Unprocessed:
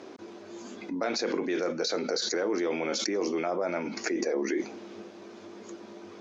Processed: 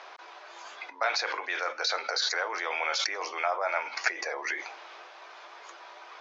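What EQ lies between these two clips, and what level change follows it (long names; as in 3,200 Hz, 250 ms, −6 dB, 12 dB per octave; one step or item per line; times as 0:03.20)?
high-pass filter 800 Hz 24 dB per octave
high-frequency loss of the air 160 metres
+9.0 dB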